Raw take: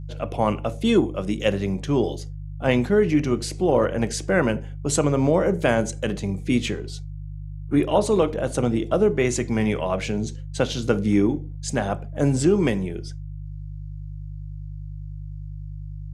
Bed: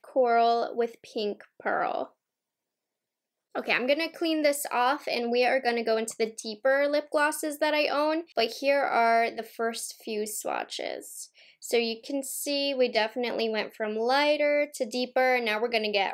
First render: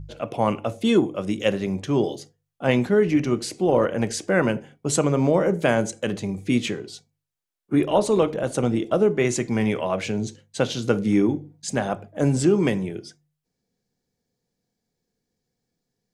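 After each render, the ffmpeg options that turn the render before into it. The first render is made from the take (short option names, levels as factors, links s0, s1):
-af "bandreject=f=50:t=h:w=4,bandreject=f=100:t=h:w=4,bandreject=f=150:t=h:w=4"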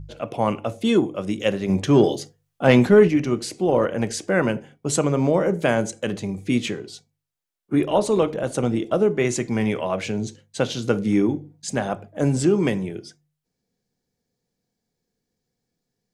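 -filter_complex "[0:a]asplit=3[s0][s1][s2];[s0]afade=t=out:st=1.68:d=0.02[s3];[s1]acontrast=70,afade=t=in:st=1.68:d=0.02,afade=t=out:st=3.07:d=0.02[s4];[s2]afade=t=in:st=3.07:d=0.02[s5];[s3][s4][s5]amix=inputs=3:normalize=0"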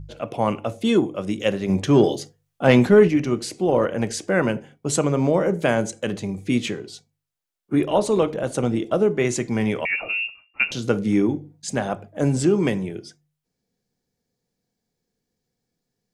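-filter_complex "[0:a]asettb=1/sr,asplit=3[s0][s1][s2];[s0]atrim=end=9.854[s3];[s1]atrim=start=9.85:end=10.72,asetpts=PTS-STARTPTS,afade=t=in:d=0.004:c=qsin,afade=t=out:st=0.866:d=0.004:c=qsin,lowpass=f=2500:t=q:w=0.5098,lowpass=f=2500:t=q:w=0.6013,lowpass=f=2500:t=q:w=0.9,lowpass=f=2500:t=q:w=2.563,afreqshift=-2900[s4];[s2]atrim=start=10.716[s5];[s3][s4]acrossfade=d=0.004:c1=hsin:c2=qsin[s6];[s6][s5]acrossfade=d=0.004:c1=qsin:c2=hsin"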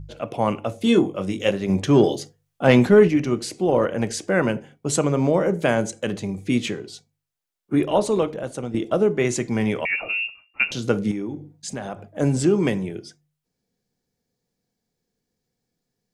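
-filter_complex "[0:a]asettb=1/sr,asplit=3[s0][s1][s2];[s0]atrim=end=0.794[s3];[s1]atrim=start=0.79:end=1.51,asetpts=PTS-STARTPTS,afade=t=in:d=0.004:c=qsin,afade=t=out:st=0.716:d=0.004:c=qsin,asplit=2[s4][s5];[s5]adelay=21,volume=0.501[s6];[s4][s6]amix=inputs=2:normalize=0,atrim=end_sample=31752[s7];[s2]atrim=start=1.506[s8];[s3][s7]acrossfade=d=0.004:c1=hsin:c2=qsin[s9];[s9][s8]acrossfade=d=0.004:c1=qsin:c2=hsin,asettb=1/sr,asplit=3[s10][s11][s12];[s10]atrim=end=11.114[s13];[s11]atrim=start=11.11:end=12.1,asetpts=PTS-STARTPTS,afade=t=in:d=0.004:c=qsin,afade=t=out:st=0.986:d=0.004:c=qsin,acompressor=threshold=0.0398:ratio=3:attack=3.2:release=140:knee=1:detection=peak[s14];[s12]atrim=start=12.096[s15];[s13][s14]acrossfade=d=0.004:c1=hsin:c2=qsin[s16];[s16][s15]acrossfade=d=0.004:c1=qsin:c2=hsin,asplit=2[s17][s18];[s17]atrim=end=8.74,asetpts=PTS-STARTPTS,afade=t=out:st=8:d=0.74:silence=0.316228[s19];[s18]atrim=start=8.74,asetpts=PTS-STARTPTS,afade=t=in:d=0.004:c=hsin:silence=0.316228[s20];[s19][s20]concat=n=2:v=0:a=1"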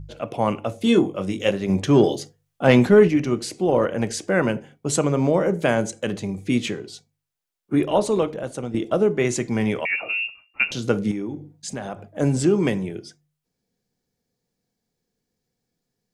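-filter_complex "[0:a]asettb=1/sr,asplit=3[s0][s1][s2];[s0]atrim=end=9.794[s3];[s1]atrim=start=9.79:end=10.22,asetpts=PTS-STARTPTS,afade=t=in:d=0.004:c=qsin,afade=t=out:st=0.426:d=0.004:c=qsin,highpass=f=210:p=1[s4];[s2]atrim=start=10.216[s5];[s3][s4]acrossfade=d=0.004:c1=hsin:c2=qsin[s6];[s6][s5]acrossfade=d=0.004:c1=qsin:c2=hsin"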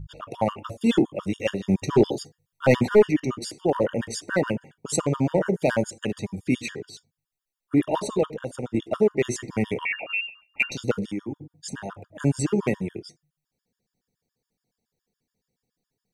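-af "aeval=exprs='clip(val(0),-1,0.299)':c=same,afftfilt=real='re*gt(sin(2*PI*7.1*pts/sr)*(1-2*mod(floor(b*sr/1024/930),2)),0)':imag='im*gt(sin(2*PI*7.1*pts/sr)*(1-2*mod(floor(b*sr/1024/930),2)),0)':win_size=1024:overlap=0.75"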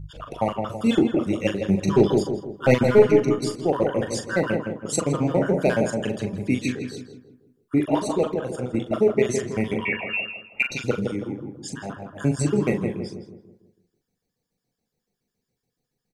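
-filter_complex "[0:a]asplit=2[s0][s1];[s1]adelay=40,volume=0.398[s2];[s0][s2]amix=inputs=2:normalize=0,asplit=2[s3][s4];[s4]adelay=163,lowpass=f=1300:p=1,volume=0.631,asplit=2[s5][s6];[s6]adelay=163,lowpass=f=1300:p=1,volume=0.45,asplit=2[s7][s8];[s8]adelay=163,lowpass=f=1300:p=1,volume=0.45,asplit=2[s9][s10];[s10]adelay=163,lowpass=f=1300:p=1,volume=0.45,asplit=2[s11][s12];[s12]adelay=163,lowpass=f=1300:p=1,volume=0.45,asplit=2[s13][s14];[s14]adelay=163,lowpass=f=1300:p=1,volume=0.45[s15];[s3][s5][s7][s9][s11][s13][s15]amix=inputs=7:normalize=0"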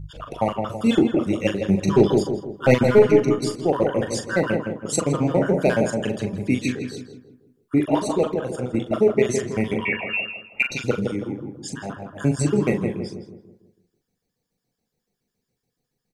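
-af "volume=1.19,alimiter=limit=0.708:level=0:latency=1"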